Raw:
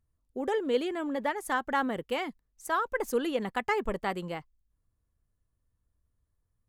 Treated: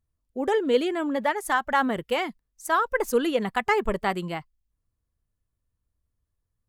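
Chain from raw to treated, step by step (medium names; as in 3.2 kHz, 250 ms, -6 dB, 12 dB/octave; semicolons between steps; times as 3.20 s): spectral noise reduction 8 dB; trim +6 dB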